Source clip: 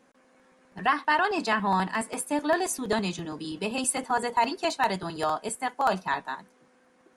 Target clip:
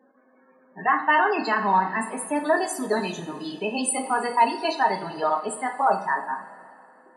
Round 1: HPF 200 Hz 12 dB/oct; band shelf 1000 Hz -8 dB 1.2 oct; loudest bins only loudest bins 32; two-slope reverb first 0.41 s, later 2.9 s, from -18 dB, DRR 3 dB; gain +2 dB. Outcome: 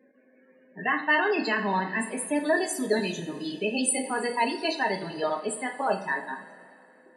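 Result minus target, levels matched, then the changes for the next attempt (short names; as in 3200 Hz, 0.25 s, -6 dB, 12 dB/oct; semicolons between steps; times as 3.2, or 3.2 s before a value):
1000 Hz band -5.0 dB
remove: band shelf 1000 Hz -8 dB 1.2 oct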